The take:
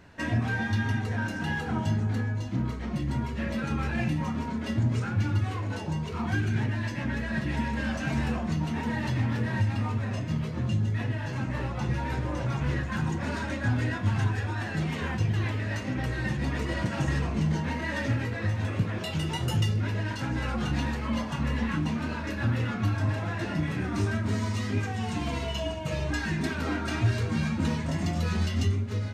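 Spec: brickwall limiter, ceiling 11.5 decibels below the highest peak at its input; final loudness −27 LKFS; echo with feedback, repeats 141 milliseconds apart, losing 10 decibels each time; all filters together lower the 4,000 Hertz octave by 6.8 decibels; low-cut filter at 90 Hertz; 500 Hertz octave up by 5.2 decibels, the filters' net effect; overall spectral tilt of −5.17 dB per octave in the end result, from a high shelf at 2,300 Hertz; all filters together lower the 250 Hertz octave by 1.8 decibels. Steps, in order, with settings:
high-pass filter 90 Hz
parametric band 250 Hz −4 dB
parametric band 500 Hz +8 dB
high-shelf EQ 2,300 Hz −3.5 dB
parametric band 4,000 Hz −7 dB
brickwall limiter −26.5 dBFS
repeating echo 141 ms, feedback 32%, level −10 dB
level +7.5 dB

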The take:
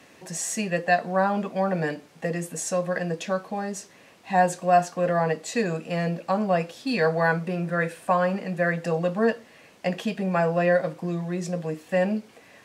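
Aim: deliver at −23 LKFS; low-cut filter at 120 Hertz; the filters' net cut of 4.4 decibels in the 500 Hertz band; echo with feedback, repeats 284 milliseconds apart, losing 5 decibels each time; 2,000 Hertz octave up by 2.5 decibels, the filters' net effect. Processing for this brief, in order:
high-pass filter 120 Hz
parametric band 500 Hz −5.5 dB
parametric band 2,000 Hz +3.5 dB
repeating echo 284 ms, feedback 56%, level −5 dB
level +3 dB

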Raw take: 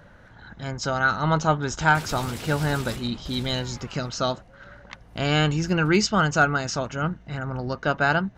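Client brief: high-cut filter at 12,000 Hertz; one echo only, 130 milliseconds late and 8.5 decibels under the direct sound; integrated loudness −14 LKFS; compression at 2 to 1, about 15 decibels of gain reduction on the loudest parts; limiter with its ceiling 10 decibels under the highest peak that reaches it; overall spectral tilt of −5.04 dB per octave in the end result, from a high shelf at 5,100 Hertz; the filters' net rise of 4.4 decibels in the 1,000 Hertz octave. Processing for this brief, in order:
low-pass filter 12,000 Hz
parametric band 1,000 Hz +6.5 dB
high-shelf EQ 5,100 Hz −7 dB
downward compressor 2 to 1, threshold −39 dBFS
brickwall limiter −28 dBFS
single-tap delay 130 ms −8.5 dB
level +24 dB

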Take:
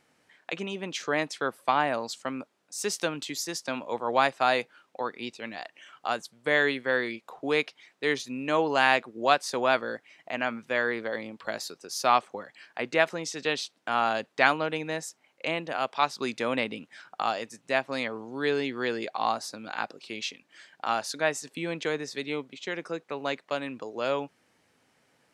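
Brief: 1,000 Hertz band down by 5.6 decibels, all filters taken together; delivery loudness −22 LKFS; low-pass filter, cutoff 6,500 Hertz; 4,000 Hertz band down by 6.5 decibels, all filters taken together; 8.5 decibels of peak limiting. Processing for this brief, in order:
low-pass filter 6,500 Hz
parametric band 1,000 Hz −7.5 dB
parametric band 4,000 Hz −7.5 dB
level +11.5 dB
brickwall limiter −5.5 dBFS

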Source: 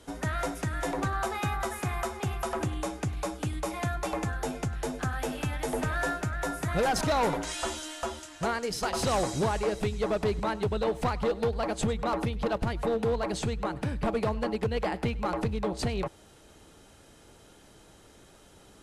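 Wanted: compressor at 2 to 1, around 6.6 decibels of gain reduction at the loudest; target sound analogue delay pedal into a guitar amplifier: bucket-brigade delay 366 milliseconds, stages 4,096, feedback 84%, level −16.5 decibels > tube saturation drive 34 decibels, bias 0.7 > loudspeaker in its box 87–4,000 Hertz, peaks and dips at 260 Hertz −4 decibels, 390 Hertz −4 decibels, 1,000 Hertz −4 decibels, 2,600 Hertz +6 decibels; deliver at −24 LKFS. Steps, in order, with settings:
downward compressor 2 to 1, threshold −36 dBFS
bucket-brigade delay 366 ms, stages 4,096, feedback 84%, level −16.5 dB
tube saturation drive 34 dB, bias 0.7
loudspeaker in its box 87–4,000 Hz, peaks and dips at 260 Hz −4 dB, 390 Hz −4 dB, 1,000 Hz −4 dB, 2,600 Hz +6 dB
level +18 dB

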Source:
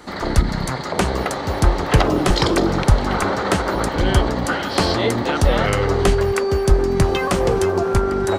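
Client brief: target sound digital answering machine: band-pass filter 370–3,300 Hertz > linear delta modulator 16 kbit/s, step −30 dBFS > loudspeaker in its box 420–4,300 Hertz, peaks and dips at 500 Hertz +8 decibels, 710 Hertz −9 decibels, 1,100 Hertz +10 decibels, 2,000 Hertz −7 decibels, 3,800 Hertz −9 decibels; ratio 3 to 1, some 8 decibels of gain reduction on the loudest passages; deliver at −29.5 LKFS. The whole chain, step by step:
downward compressor 3 to 1, threshold −19 dBFS
band-pass filter 370–3,300 Hz
linear delta modulator 16 kbit/s, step −30 dBFS
loudspeaker in its box 420–4,300 Hz, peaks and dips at 500 Hz +8 dB, 710 Hz −9 dB, 1,100 Hz +10 dB, 2,000 Hz −7 dB, 3,800 Hz −9 dB
level −4 dB

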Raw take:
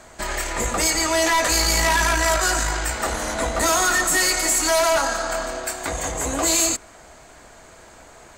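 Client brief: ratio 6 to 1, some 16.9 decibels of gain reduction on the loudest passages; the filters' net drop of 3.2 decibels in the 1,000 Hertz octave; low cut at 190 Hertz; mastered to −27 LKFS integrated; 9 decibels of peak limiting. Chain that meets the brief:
high-pass filter 190 Hz
parametric band 1,000 Hz −4 dB
downward compressor 6 to 1, threshold −37 dBFS
level +14 dB
brickwall limiter −20 dBFS

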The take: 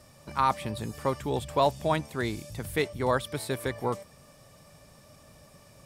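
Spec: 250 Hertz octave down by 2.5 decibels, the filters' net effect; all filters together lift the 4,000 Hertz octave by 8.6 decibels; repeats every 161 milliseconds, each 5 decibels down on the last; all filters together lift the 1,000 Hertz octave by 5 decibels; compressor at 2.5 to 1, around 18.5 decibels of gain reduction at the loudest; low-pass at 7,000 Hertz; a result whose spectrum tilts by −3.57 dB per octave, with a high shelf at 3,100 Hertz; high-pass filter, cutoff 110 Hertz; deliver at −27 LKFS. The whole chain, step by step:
high-pass filter 110 Hz
low-pass filter 7,000 Hz
parametric band 250 Hz −3.5 dB
parametric band 1,000 Hz +5 dB
high-shelf EQ 3,100 Hz +8 dB
parametric band 4,000 Hz +4.5 dB
downward compressor 2.5 to 1, threshold −44 dBFS
repeating echo 161 ms, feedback 56%, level −5 dB
level +14 dB

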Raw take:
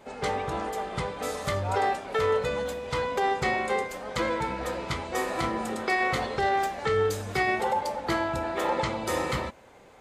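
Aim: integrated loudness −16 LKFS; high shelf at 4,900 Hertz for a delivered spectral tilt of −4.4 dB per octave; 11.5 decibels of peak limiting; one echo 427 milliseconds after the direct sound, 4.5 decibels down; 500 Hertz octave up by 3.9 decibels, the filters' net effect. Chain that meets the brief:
parametric band 500 Hz +4.5 dB
high-shelf EQ 4,900 Hz +4.5 dB
brickwall limiter −23.5 dBFS
single-tap delay 427 ms −4.5 dB
level +14.5 dB

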